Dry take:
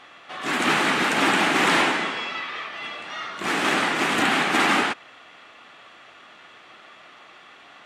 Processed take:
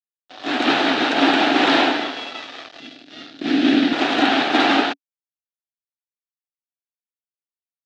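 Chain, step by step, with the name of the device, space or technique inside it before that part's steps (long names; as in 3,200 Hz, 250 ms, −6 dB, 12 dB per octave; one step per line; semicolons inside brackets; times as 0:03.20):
blown loudspeaker (dead-zone distortion −33.5 dBFS; loudspeaker in its box 180–5,000 Hz, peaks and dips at 190 Hz −9 dB, 280 Hz +9 dB, 700 Hz +7 dB, 1,100 Hz −7 dB, 2,100 Hz −6 dB, 3,800 Hz +5 dB)
0:02.80–0:03.93: graphic EQ with 10 bands 125 Hz +3 dB, 250 Hz +11 dB, 500 Hz −4 dB, 1,000 Hz −12 dB, 8,000 Hz −5 dB
level +4.5 dB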